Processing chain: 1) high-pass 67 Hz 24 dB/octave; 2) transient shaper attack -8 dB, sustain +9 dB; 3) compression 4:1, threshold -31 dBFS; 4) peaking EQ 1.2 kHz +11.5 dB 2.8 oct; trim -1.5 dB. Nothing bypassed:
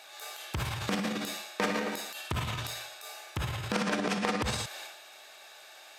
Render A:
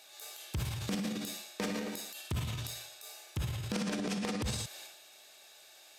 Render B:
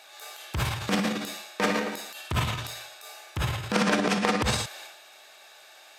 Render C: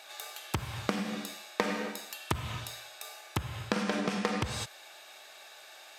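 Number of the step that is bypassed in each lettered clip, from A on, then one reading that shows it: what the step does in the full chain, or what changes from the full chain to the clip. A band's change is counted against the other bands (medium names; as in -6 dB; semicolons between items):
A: 4, 1 kHz band -7.0 dB; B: 3, mean gain reduction 2.0 dB; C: 2, crest factor change +6.0 dB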